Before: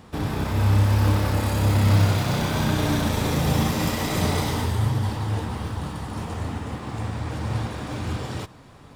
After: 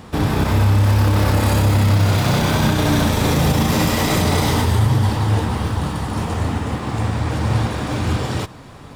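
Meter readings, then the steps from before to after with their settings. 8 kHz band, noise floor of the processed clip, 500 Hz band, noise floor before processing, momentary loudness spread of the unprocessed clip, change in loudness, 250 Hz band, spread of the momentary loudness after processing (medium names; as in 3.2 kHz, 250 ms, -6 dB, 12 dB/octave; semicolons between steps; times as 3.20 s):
+6.5 dB, -39 dBFS, +6.5 dB, -47 dBFS, 12 LU, +6.0 dB, +6.5 dB, 7 LU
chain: peak limiter -16 dBFS, peak gain reduction 8 dB; trim +8.5 dB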